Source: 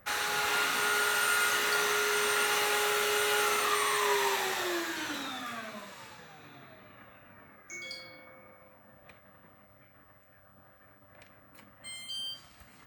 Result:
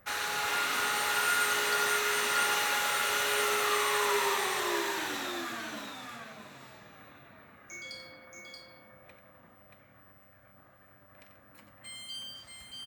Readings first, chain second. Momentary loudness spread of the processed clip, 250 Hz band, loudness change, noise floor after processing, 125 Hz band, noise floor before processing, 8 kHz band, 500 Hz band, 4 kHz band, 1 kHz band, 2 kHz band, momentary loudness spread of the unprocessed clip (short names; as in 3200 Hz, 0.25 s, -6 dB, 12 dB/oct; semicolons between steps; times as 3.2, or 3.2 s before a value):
19 LU, -0.5 dB, 0.0 dB, -59 dBFS, 0.0 dB, -60 dBFS, 0.0 dB, -1.5 dB, -0.5 dB, 0.0 dB, 0.0 dB, 17 LU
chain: tapped delay 90/630 ms -9/-4 dB; gain -2 dB